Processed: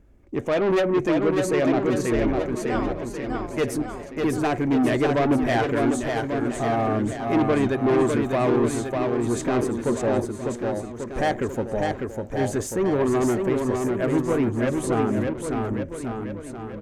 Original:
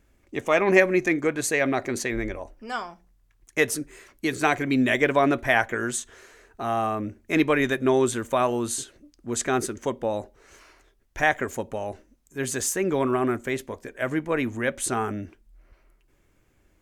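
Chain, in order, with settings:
tilt shelving filter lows +8 dB, about 1,200 Hz
soft clipping −17.5 dBFS, distortion −9 dB
on a send: bouncing-ball delay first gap 600 ms, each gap 0.9×, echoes 5

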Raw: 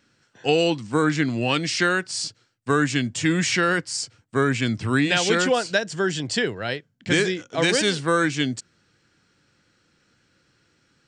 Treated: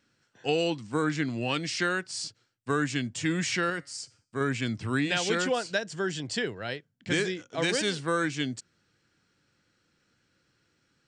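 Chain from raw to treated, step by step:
0:03.70–0:04.41: tuned comb filter 140 Hz, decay 0.48 s, harmonics all, mix 40%
level −7 dB

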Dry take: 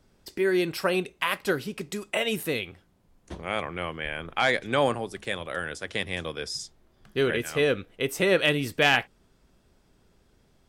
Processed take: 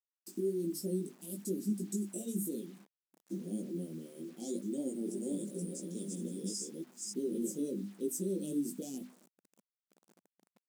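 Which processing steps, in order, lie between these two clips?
0:04.77–0:07.50: delay that plays each chunk backwards 293 ms, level −1 dB
noise gate −52 dBFS, range −11 dB
Chebyshev band-stop filter 300–7,200 Hz, order 3
high-shelf EQ 12,000 Hz −9 dB
mains-hum notches 50/100/150/200/250/300 Hz
comb filter 5.6 ms, depth 37%
brickwall limiter −30 dBFS, peak gain reduction 11 dB
multi-voice chorus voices 4, 1.1 Hz, delay 18 ms, depth 3 ms
bit reduction 11 bits
linear-phase brick-wall high-pass 170 Hz
level +6 dB

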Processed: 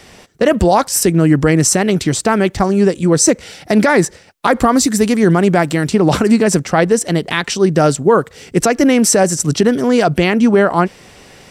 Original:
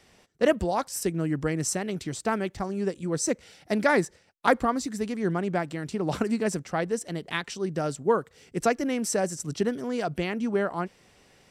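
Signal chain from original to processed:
0:04.60–0:05.89: high-shelf EQ 7,600 Hz +8.5 dB
boost into a limiter +18.5 dB
level −1 dB

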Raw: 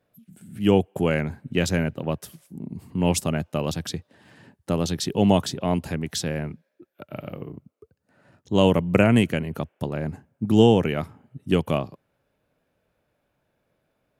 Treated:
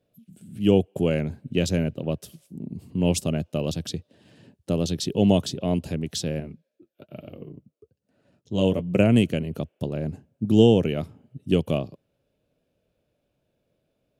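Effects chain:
flat-topped bell 1,300 Hz −9.5 dB
0:06.40–0:08.99: flanger 1.1 Hz, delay 2.3 ms, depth 8.5 ms, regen −43%
high-shelf EQ 9,300 Hz −6.5 dB

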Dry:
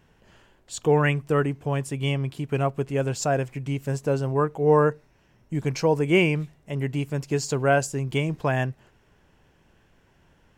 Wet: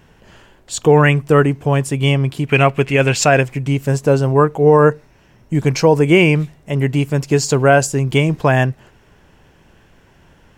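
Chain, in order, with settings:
0:02.47–0:03.41: parametric band 2,400 Hz +13.5 dB 1.2 octaves
boost into a limiter +11.5 dB
level −1 dB

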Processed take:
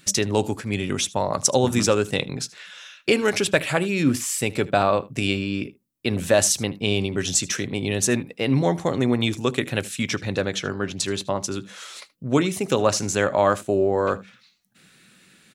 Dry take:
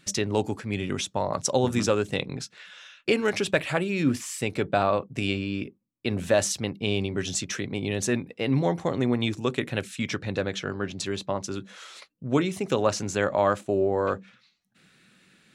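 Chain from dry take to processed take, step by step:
high-shelf EQ 7,200 Hz +10.5 dB
single-tap delay 77 ms −21 dB
level +3.5 dB

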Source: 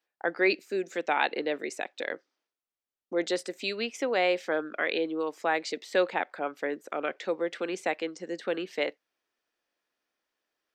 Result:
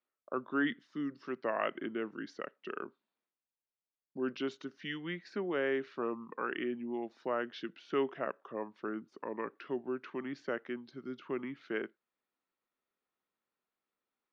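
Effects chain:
high-frequency loss of the air 95 metres
speed change −25%
level −7 dB

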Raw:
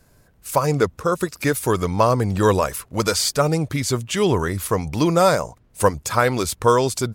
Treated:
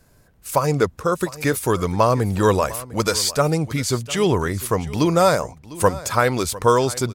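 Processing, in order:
single-tap delay 702 ms −18 dB

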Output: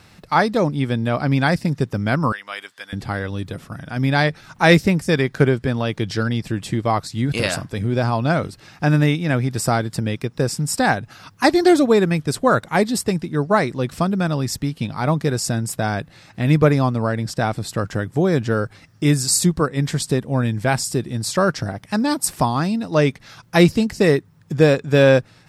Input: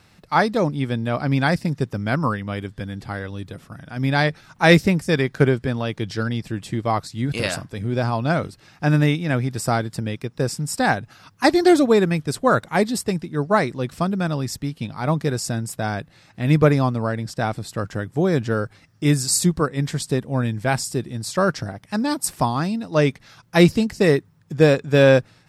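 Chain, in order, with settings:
0:02.32–0:02.93: high-pass filter 1,100 Hz 12 dB per octave
in parallel at +1 dB: downward compressor, threshold −26 dBFS, peak gain reduction 17 dB
on the sum: level −1 dB

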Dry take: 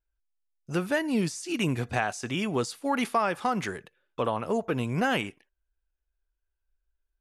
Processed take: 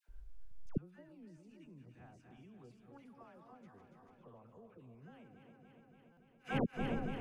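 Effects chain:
feedback delay that plays each chunk backwards 143 ms, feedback 76%, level −8.5 dB
spectral tilt −3 dB per octave
downward compressor 2.5 to 1, threshold −36 dBFS, peak gain reduction 13.5 dB
gate with flip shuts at −37 dBFS, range −40 dB
all-pass dispersion lows, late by 87 ms, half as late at 950 Hz
buffer that repeats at 0:06.12, samples 256, times 8
level +16 dB

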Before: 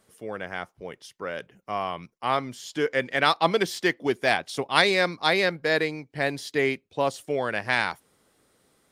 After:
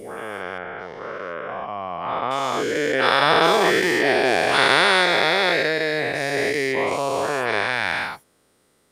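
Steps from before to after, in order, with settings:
every bin's largest magnitude spread in time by 480 ms
0:00.58–0:02.31: low-pass filter 2,200 Hz 12 dB per octave
level −4 dB

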